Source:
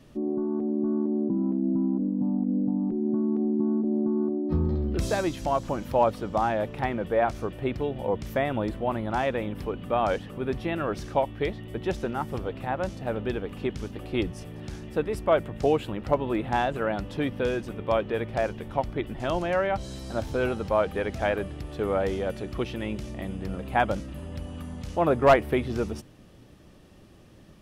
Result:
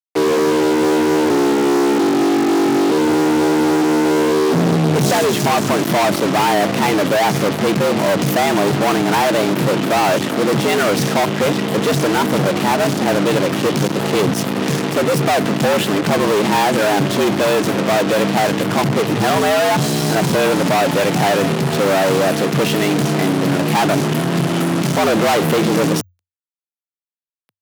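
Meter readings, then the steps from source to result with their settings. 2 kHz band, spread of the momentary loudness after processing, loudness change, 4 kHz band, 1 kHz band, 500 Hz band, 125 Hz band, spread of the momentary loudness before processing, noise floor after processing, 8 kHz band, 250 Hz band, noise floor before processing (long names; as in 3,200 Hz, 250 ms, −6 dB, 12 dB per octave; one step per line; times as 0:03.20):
+14.5 dB, 2 LU, +12.0 dB, +20.5 dB, +12.0 dB, +11.0 dB, +12.5 dB, 8 LU, below −85 dBFS, can't be measured, +12.0 dB, −51 dBFS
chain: fuzz pedal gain 47 dB, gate −40 dBFS
frequency shifter +89 Hz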